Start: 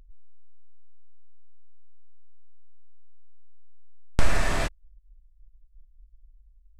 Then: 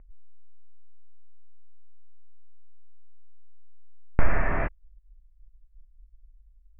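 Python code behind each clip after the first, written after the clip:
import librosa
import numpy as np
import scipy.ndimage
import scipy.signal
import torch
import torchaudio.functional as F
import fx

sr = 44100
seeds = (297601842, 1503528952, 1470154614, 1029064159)

y = scipy.signal.sosfilt(scipy.signal.butter(8, 2300.0, 'lowpass', fs=sr, output='sos'), x)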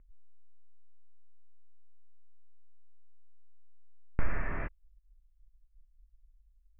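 y = fx.peak_eq(x, sr, hz=720.0, db=-6.0, octaves=0.77)
y = F.gain(torch.from_numpy(y), -8.5).numpy()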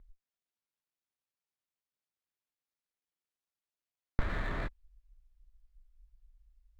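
y = fx.running_max(x, sr, window=5)
y = F.gain(torch.from_numpy(y), 1.0).numpy()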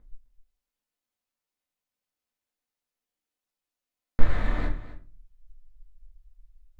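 y = x + 10.0 ** (-15.5 / 20.0) * np.pad(x, (int(259 * sr / 1000.0), 0))[:len(x)]
y = fx.room_shoebox(y, sr, seeds[0], volume_m3=170.0, walls='furnished', distance_m=2.0)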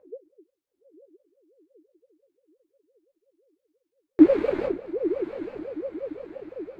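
y = fx.echo_diffused(x, sr, ms=930, feedback_pct=55, wet_db=-9.5)
y = fx.ring_lfo(y, sr, carrier_hz=430.0, swing_pct=30, hz=5.8)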